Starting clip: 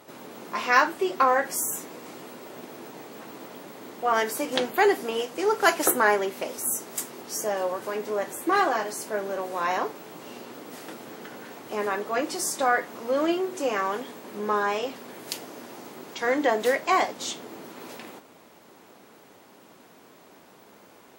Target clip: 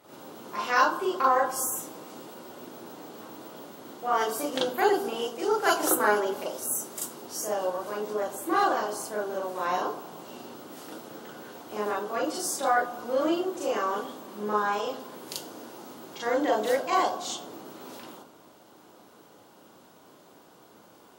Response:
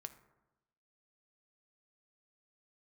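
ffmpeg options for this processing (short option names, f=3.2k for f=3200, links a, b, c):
-filter_complex "[0:a]asplit=2[a][b];[b]asuperstop=centerf=2100:order=20:qfactor=1.9[c];[1:a]atrim=start_sample=2205,asetrate=34398,aresample=44100,adelay=38[d];[c][d]afir=irnorm=-1:irlink=0,volume=9dB[e];[a][e]amix=inputs=2:normalize=0,volume=-8dB"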